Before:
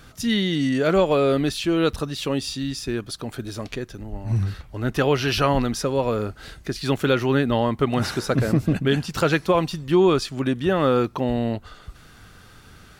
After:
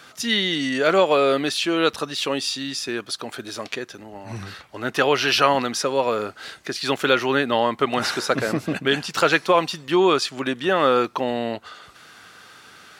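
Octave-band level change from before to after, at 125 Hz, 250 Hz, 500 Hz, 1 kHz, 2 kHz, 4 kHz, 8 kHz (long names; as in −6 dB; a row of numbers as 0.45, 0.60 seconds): −10.5, −3.5, +1.0, +4.5, +5.5, +5.5, +4.0 decibels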